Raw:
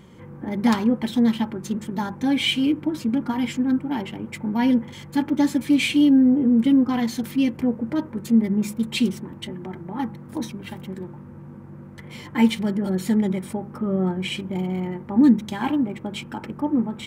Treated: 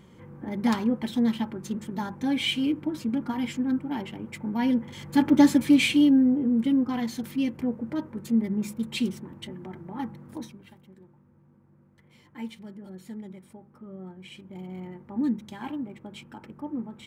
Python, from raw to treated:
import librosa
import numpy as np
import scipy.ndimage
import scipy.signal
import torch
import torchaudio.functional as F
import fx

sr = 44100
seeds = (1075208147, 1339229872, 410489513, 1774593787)

y = fx.gain(x, sr, db=fx.line((4.78, -5.0), (5.35, 3.5), (6.41, -6.0), (10.28, -6.0), (10.8, -19.0), (14.17, -19.0), (14.8, -11.5)))